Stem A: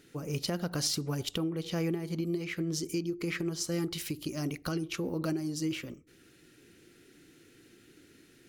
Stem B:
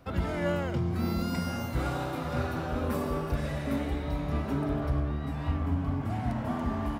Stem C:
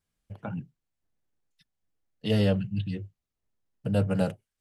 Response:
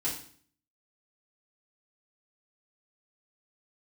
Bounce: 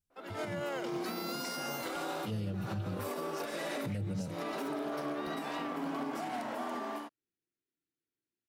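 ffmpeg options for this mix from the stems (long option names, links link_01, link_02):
-filter_complex "[0:a]agate=range=-25dB:threshold=-47dB:ratio=16:detection=peak,adelay=600,volume=-13.5dB[link_01];[1:a]highpass=frequency=310:width=0.5412,highpass=frequency=310:width=1.3066,dynaudnorm=framelen=120:gausssize=5:maxgain=11dB,adynamicequalizer=threshold=0.00794:dfrequency=3000:dqfactor=0.7:tfrequency=3000:tqfactor=0.7:attack=5:release=100:ratio=0.375:range=2.5:mode=boostabove:tftype=highshelf,adelay=100,volume=-10dB[link_02];[2:a]equalizer=frequency=1200:width=0.34:gain=-14,volume=-4dB,asplit=2[link_03][link_04];[link_04]apad=whole_len=312778[link_05];[link_02][link_05]sidechaincompress=threshold=-47dB:ratio=8:attack=34:release=172[link_06];[link_06][link_03]amix=inputs=2:normalize=0,dynaudnorm=framelen=100:gausssize=11:maxgain=8dB,alimiter=level_in=0.5dB:limit=-24dB:level=0:latency=1:release=394,volume=-0.5dB,volume=0dB[link_07];[link_01][link_07]amix=inputs=2:normalize=0,alimiter=level_in=4.5dB:limit=-24dB:level=0:latency=1:release=100,volume=-4.5dB"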